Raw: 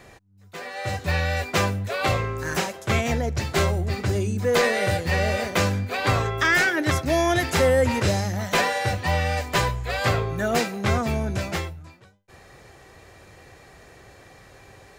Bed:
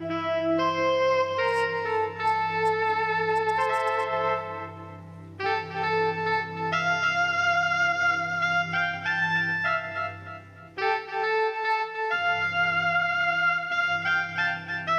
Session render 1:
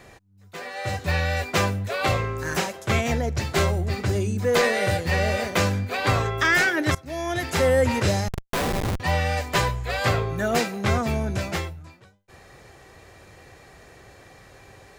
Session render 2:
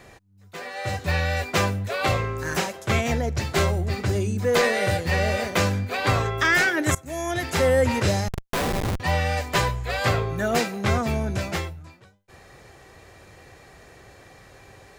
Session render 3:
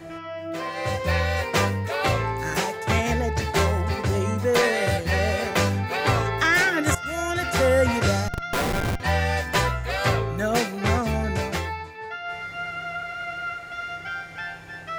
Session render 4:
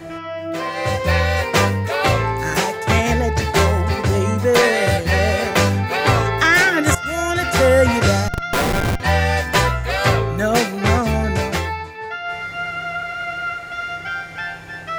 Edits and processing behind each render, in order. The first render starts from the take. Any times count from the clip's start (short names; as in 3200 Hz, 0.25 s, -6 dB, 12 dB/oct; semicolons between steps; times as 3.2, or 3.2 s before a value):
6.95–7.75 fade in, from -21 dB; 8.28–9 Schmitt trigger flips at -20.5 dBFS
6.84–7.31 resonant high shelf 6000 Hz +6 dB, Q 3
add bed -7.5 dB
gain +6 dB